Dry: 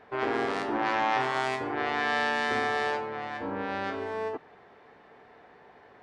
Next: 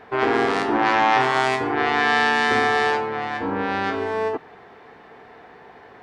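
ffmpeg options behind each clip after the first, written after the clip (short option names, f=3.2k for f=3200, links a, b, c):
-af "bandreject=f=580:w=12,volume=9dB"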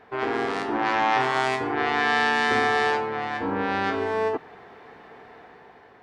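-af "dynaudnorm=f=360:g=5:m=6dB,volume=-6.5dB"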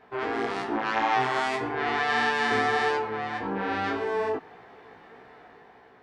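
-af "flanger=delay=15.5:depth=3.5:speed=1.7"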